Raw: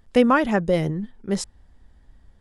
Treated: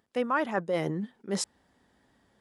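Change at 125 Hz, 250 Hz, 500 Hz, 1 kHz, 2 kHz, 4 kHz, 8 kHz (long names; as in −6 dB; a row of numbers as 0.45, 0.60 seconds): −10.0, −11.5, −9.0, −7.5, −7.0, −5.0, −1.0 decibels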